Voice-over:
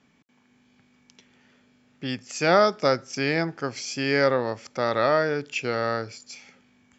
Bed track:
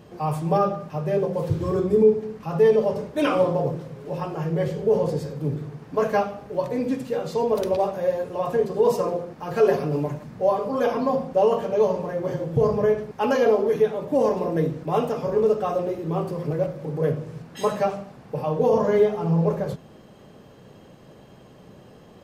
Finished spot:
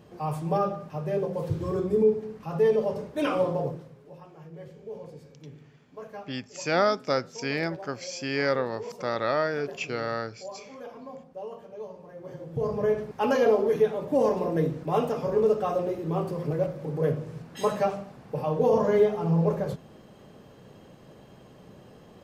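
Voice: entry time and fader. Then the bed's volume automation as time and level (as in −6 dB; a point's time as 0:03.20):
4.25 s, −4.5 dB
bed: 0:03.64 −5 dB
0:04.23 −19.5 dB
0:11.97 −19.5 dB
0:13.00 −2.5 dB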